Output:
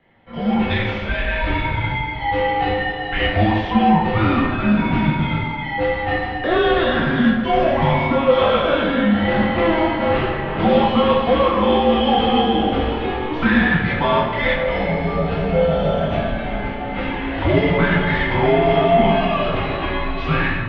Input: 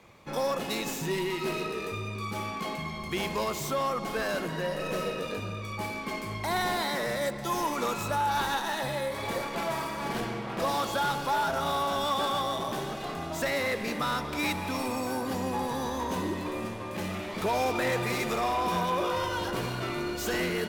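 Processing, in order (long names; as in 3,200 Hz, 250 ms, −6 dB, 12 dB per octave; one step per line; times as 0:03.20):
low-shelf EQ 230 Hz +10.5 dB
automatic gain control gain up to 16 dB
rectangular room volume 170 cubic metres, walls mixed, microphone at 1.4 metres
single-sideband voice off tune −330 Hz 400–3,600 Hz
level −5.5 dB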